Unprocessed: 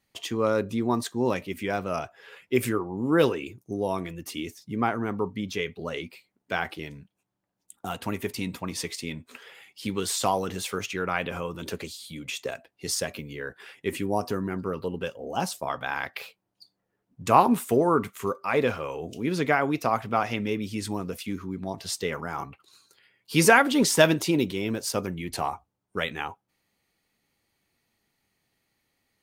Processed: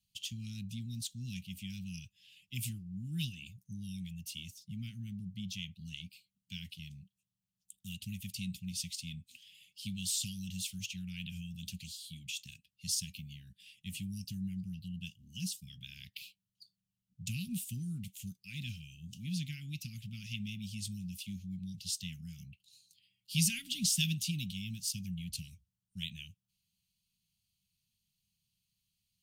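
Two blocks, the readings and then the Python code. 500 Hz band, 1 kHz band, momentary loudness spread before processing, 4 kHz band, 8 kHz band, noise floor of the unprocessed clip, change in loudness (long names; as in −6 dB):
below −40 dB, below −40 dB, 15 LU, −5.0 dB, −4.5 dB, −80 dBFS, −12.0 dB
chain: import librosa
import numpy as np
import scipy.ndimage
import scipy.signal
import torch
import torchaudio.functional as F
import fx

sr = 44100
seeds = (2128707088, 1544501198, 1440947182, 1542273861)

y = scipy.signal.sosfilt(scipy.signal.cheby1(4, 1.0, [190.0, 2800.0], 'bandstop', fs=sr, output='sos'), x)
y = F.gain(torch.from_numpy(y), -4.5).numpy()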